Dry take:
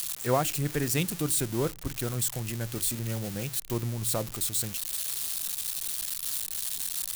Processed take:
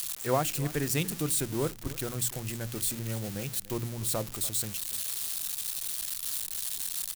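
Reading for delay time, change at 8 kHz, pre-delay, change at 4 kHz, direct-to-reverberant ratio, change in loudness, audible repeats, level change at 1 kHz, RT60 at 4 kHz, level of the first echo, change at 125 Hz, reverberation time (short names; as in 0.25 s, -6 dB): 0.29 s, -1.5 dB, none, -1.5 dB, none, -1.5 dB, 1, -1.5 dB, none, -18.5 dB, -2.5 dB, none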